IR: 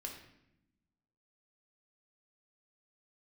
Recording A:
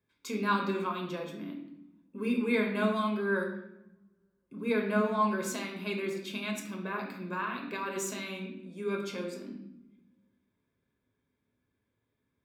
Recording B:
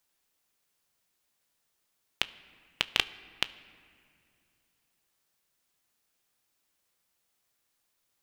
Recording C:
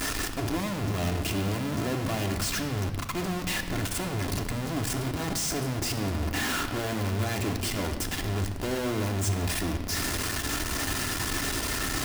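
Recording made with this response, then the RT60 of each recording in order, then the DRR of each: A; 0.80, 2.5, 1.6 s; 1.0, 13.5, 3.5 dB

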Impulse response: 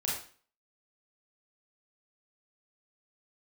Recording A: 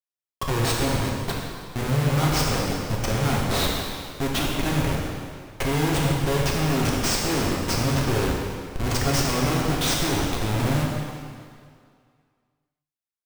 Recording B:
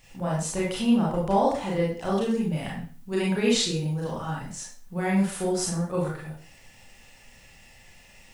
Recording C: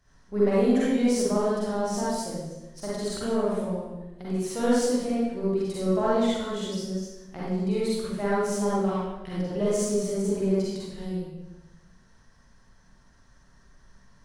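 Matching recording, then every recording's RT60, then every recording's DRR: B; 2.1, 0.40, 1.0 s; -3.5, -5.5, -8.5 dB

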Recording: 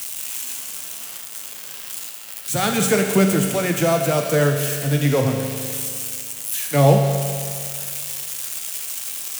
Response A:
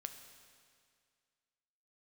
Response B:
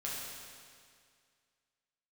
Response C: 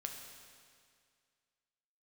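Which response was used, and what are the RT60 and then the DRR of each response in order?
C; 2.1, 2.1, 2.1 s; 6.5, -6.0, 2.5 dB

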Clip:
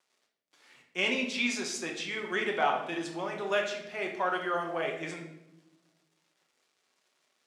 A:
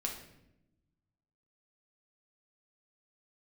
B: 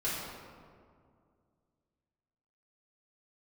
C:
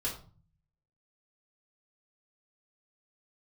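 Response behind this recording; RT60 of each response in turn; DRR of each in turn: A; 0.85, 2.2, 0.40 s; 0.0, -10.0, -5.0 dB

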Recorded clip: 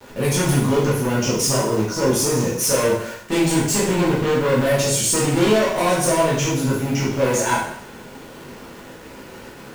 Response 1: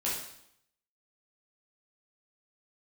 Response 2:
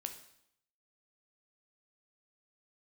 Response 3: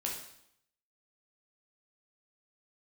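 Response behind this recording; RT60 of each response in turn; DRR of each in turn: 1; 0.75, 0.75, 0.75 s; -7.0, 6.0, -2.0 dB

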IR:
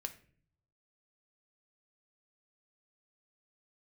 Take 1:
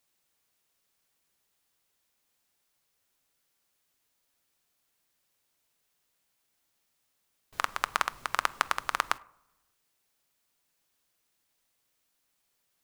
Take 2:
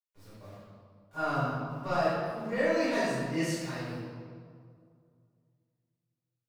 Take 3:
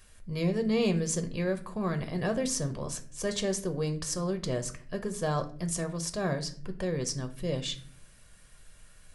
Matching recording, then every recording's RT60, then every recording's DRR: 3; not exponential, 2.2 s, 0.50 s; 16.5, -16.0, 6.5 dB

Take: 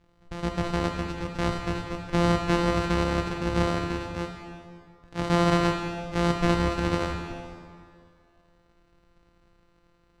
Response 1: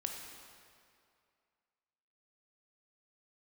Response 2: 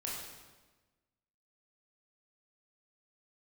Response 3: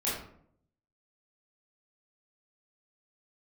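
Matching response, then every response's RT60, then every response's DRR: 1; 2.4, 1.3, 0.65 s; 1.5, -5.0, -9.0 dB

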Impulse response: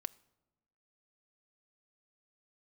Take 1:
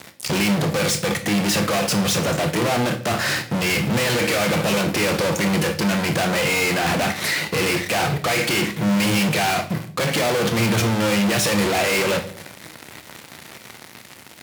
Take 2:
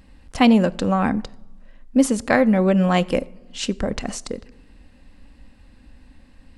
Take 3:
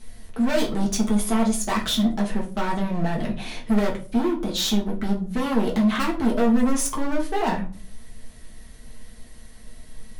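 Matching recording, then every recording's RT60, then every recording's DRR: 2; not exponential, 1.0 s, 0.40 s; 7.0, 13.5, -3.0 dB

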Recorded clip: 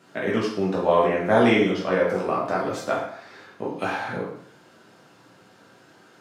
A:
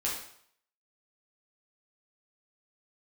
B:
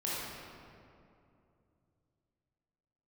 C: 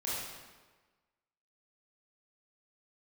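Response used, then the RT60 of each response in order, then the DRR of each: A; 0.60, 2.6, 1.3 s; -5.5, -8.0, -8.5 dB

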